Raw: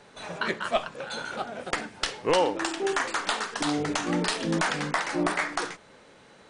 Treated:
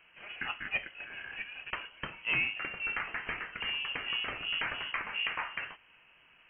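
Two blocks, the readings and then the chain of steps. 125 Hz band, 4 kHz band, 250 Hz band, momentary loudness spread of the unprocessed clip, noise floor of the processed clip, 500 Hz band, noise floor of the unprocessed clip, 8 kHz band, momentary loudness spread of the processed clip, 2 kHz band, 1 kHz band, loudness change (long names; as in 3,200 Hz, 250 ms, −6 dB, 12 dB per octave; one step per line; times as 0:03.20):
−15.5 dB, −3.5 dB, −22.0 dB, 9 LU, −63 dBFS, −22.0 dB, −54 dBFS, below −40 dB, 11 LU, −2.5 dB, −13.0 dB, −6.5 dB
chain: voice inversion scrambler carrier 3,100 Hz
level −8 dB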